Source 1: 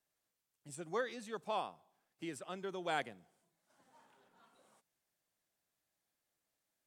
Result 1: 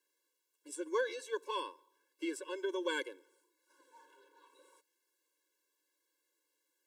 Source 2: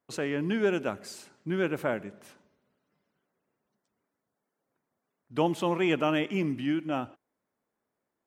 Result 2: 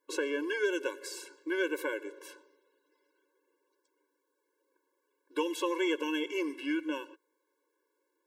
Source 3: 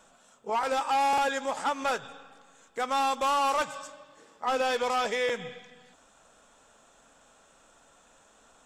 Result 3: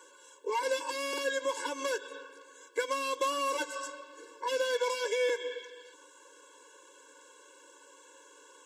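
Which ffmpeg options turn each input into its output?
ffmpeg -i in.wav -filter_complex "[0:a]acrossover=split=550|1600|3500[link_01][link_02][link_03][link_04];[link_01]acompressor=threshold=-41dB:ratio=4[link_05];[link_02]acompressor=threshold=-41dB:ratio=4[link_06];[link_03]acompressor=threshold=-46dB:ratio=4[link_07];[link_04]acompressor=threshold=-45dB:ratio=4[link_08];[link_05][link_06][link_07][link_08]amix=inputs=4:normalize=0,afftfilt=real='re*eq(mod(floor(b*sr/1024/290),2),1)':imag='im*eq(mod(floor(b*sr/1024/290),2),1)':win_size=1024:overlap=0.75,volume=7.5dB" out.wav

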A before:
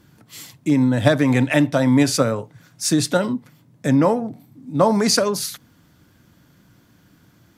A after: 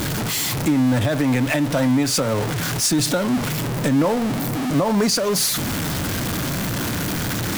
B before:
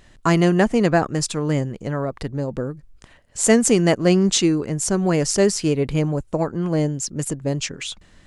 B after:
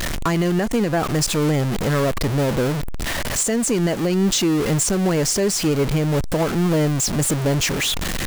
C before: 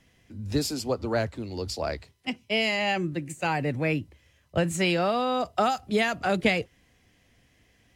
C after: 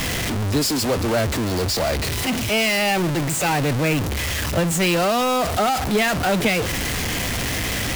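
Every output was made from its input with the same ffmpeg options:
ffmpeg -i in.wav -af "aeval=exprs='val(0)+0.5*0.126*sgn(val(0))':channel_layout=same,alimiter=limit=-11dB:level=0:latency=1:release=217" out.wav

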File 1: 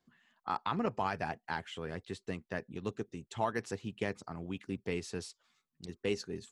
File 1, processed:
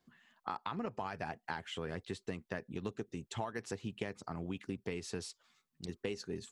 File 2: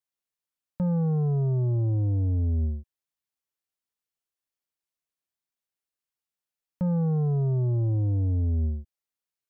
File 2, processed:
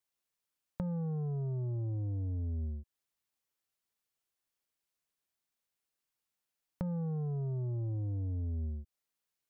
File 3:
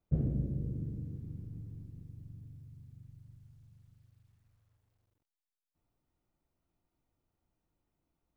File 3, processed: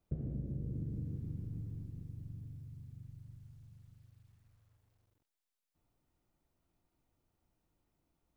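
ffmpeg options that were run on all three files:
ffmpeg -i in.wav -af "acompressor=threshold=-37dB:ratio=16,volume=2.5dB" out.wav

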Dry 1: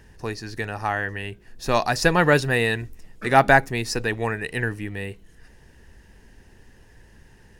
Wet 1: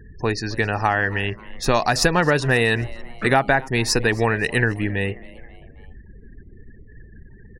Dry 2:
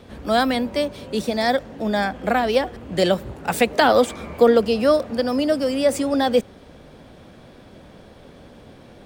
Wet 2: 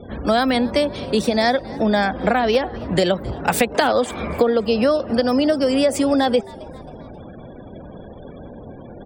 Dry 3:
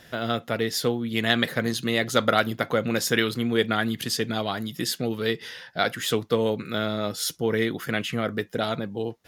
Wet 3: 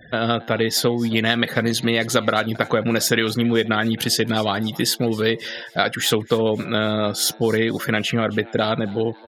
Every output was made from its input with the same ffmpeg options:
ffmpeg -i in.wav -filter_complex "[0:a]acompressor=threshold=-22dB:ratio=8,afftfilt=real='re*gte(hypot(re,im),0.00562)':imag='im*gte(hypot(re,im),0.00562)':win_size=1024:overlap=0.75,asplit=4[link_01][link_02][link_03][link_04];[link_02]adelay=268,afreqshift=120,volume=-22dB[link_05];[link_03]adelay=536,afreqshift=240,volume=-28.2dB[link_06];[link_04]adelay=804,afreqshift=360,volume=-34.4dB[link_07];[link_01][link_05][link_06][link_07]amix=inputs=4:normalize=0,volume=8dB" out.wav

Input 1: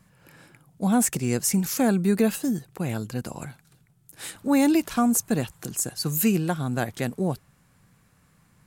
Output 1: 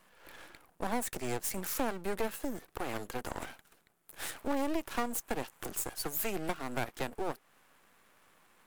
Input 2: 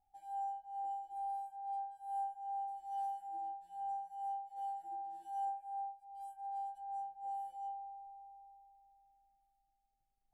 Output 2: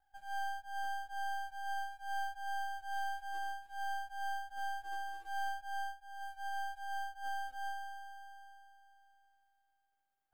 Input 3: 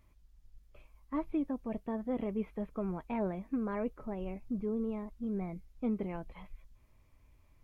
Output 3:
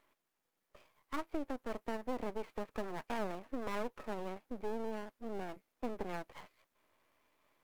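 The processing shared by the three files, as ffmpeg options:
ffmpeg -i in.wav -filter_complex "[0:a]highpass=frequency=200:width=0.5412,highpass=frequency=200:width=1.3066,acrossover=split=340 2200:gain=0.158 1 0.141[link_01][link_02][link_03];[link_01][link_02][link_03]amix=inputs=3:normalize=0,aeval=exprs='max(val(0),0)':channel_layout=same,crystalizer=i=2:c=0,acompressor=threshold=-40dB:ratio=2.5,volume=7dB" out.wav

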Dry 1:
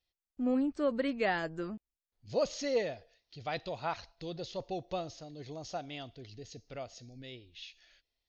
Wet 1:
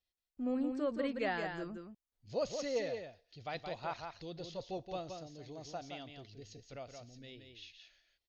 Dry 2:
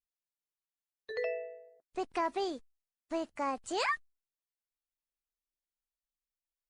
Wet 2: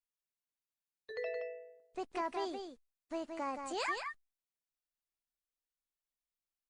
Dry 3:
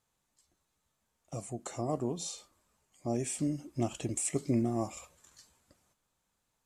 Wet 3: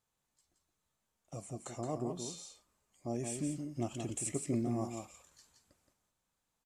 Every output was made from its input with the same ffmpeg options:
ffmpeg -i in.wav -af "aecho=1:1:172:0.501,volume=-5dB" out.wav

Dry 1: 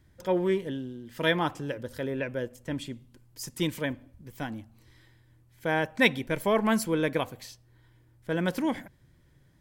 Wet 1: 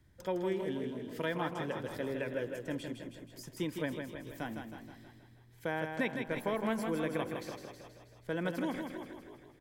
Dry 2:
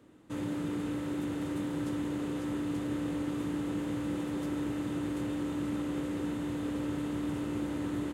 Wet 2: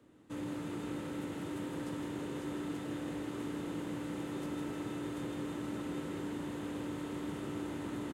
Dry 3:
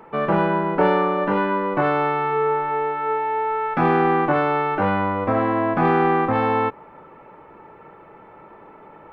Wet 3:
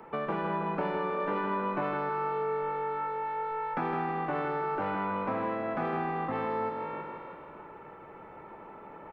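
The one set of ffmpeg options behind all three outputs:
ffmpeg -i in.wav -filter_complex "[0:a]asplit=2[link_01][link_02];[link_02]asplit=3[link_03][link_04][link_05];[link_03]adelay=323,afreqshift=48,volume=-16dB[link_06];[link_04]adelay=646,afreqshift=96,volume=-25.6dB[link_07];[link_05]adelay=969,afreqshift=144,volume=-35.3dB[link_08];[link_06][link_07][link_08]amix=inputs=3:normalize=0[link_09];[link_01][link_09]amix=inputs=2:normalize=0,acrossover=split=180|2200[link_10][link_11][link_12];[link_10]acompressor=threshold=-46dB:ratio=4[link_13];[link_11]acompressor=threshold=-28dB:ratio=4[link_14];[link_12]acompressor=threshold=-47dB:ratio=4[link_15];[link_13][link_14][link_15]amix=inputs=3:normalize=0,asplit=2[link_16][link_17];[link_17]aecho=0:1:159|318|477|636|795|954:0.501|0.261|0.136|0.0705|0.0366|0.0191[link_18];[link_16][link_18]amix=inputs=2:normalize=0,volume=-4dB" out.wav

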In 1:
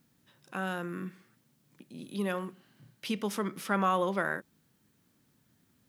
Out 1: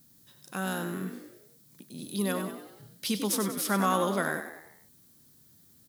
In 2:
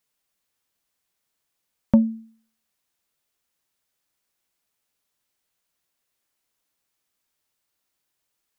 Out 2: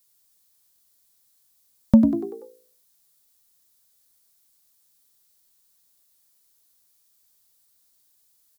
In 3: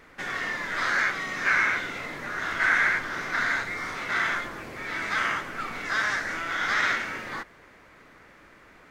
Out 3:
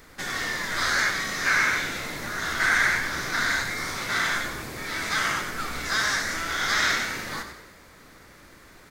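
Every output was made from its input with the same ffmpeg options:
ffmpeg -i in.wav -filter_complex "[0:a]aexciter=amount=4.1:drive=2.9:freq=3700,lowshelf=frequency=160:gain=7.5,asplit=6[link_01][link_02][link_03][link_04][link_05][link_06];[link_02]adelay=96,afreqshift=57,volume=-8.5dB[link_07];[link_03]adelay=192,afreqshift=114,volume=-14.9dB[link_08];[link_04]adelay=288,afreqshift=171,volume=-21.3dB[link_09];[link_05]adelay=384,afreqshift=228,volume=-27.6dB[link_10];[link_06]adelay=480,afreqshift=285,volume=-34dB[link_11];[link_01][link_07][link_08][link_09][link_10][link_11]amix=inputs=6:normalize=0" out.wav

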